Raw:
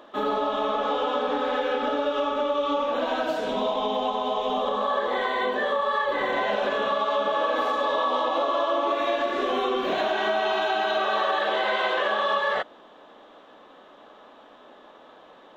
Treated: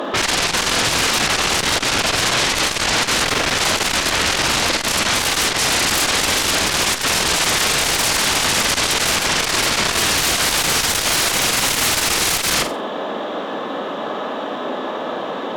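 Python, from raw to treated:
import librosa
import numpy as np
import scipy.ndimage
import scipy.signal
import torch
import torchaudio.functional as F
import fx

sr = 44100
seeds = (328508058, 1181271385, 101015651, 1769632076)

y = scipy.signal.sosfilt(scipy.signal.butter(4, 140.0, 'highpass', fs=sr, output='sos'), x)
y = fx.low_shelf(y, sr, hz=310.0, db=9.0)
y = fx.hum_notches(y, sr, base_hz=60, count=6)
y = fx.fold_sine(y, sr, drive_db=15, ceiling_db=-18.0)
y = fx.room_flutter(y, sr, wall_m=8.0, rt60_s=0.31)
y = fx.transformer_sat(y, sr, knee_hz=210.0)
y = F.gain(torch.from_numpy(y), 4.0).numpy()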